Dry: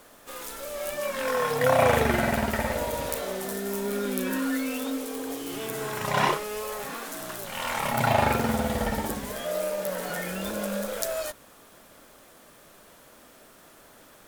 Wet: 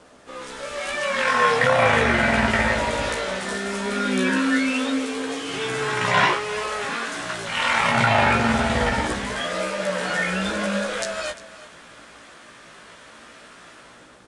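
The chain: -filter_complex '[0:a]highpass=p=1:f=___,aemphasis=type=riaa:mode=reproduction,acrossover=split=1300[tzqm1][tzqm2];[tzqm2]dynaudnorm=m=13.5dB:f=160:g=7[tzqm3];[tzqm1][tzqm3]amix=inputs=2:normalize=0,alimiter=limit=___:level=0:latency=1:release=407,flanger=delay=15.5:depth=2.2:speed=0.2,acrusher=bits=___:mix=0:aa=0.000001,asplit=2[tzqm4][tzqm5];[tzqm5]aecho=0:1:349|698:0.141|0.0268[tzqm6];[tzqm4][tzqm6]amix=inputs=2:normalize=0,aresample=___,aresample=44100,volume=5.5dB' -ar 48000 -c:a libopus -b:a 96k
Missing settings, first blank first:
310, -9dB, 9, 22050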